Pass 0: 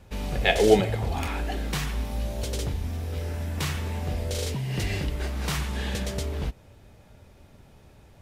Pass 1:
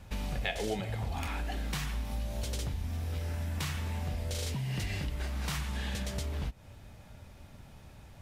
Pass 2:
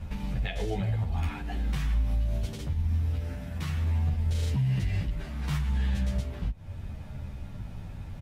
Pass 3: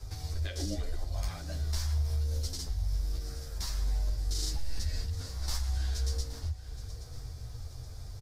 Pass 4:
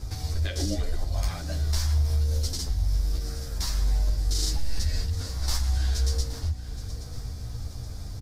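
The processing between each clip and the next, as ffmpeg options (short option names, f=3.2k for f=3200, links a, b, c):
-af "equalizer=f=410:t=o:w=0.9:g=-7,acompressor=threshold=-34dB:ratio=4,volume=1.5dB"
-filter_complex "[0:a]bass=f=250:g=9,treble=f=4k:g=-6,alimiter=level_in=3dB:limit=-24dB:level=0:latency=1:release=318,volume=-3dB,asplit=2[a][b];[b]adelay=10.7,afreqshift=-0.72[c];[a][c]amix=inputs=2:normalize=1,volume=8dB"
-af "highshelf=f=3.8k:t=q:w=3:g=10,aecho=1:1:822|1644|2466|3288:0.188|0.081|0.0348|0.015,afreqshift=-130,volume=-4dB"
-af "aeval=exprs='val(0)+0.00316*(sin(2*PI*60*n/s)+sin(2*PI*2*60*n/s)/2+sin(2*PI*3*60*n/s)/3+sin(2*PI*4*60*n/s)/4+sin(2*PI*5*60*n/s)/5)':c=same,volume=6.5dB"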